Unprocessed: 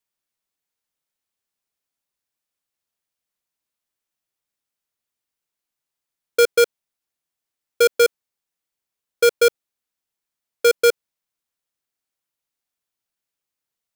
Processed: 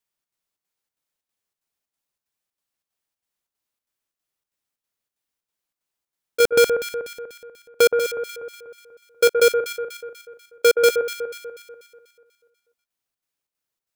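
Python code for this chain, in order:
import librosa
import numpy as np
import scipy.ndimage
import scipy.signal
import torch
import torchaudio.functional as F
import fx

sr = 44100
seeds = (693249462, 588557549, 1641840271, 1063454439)

y = fx.chopper(x, sr, hz=3.1, depth_pct=65, duty_pct=75)
y = fx.leveller(y, sr, passes=5, at=(6.4, 7.87))
y = fx.echo_alternate(y, sr, ms=122, hz=1600.0, feedback_pct=67, wet_db=-6)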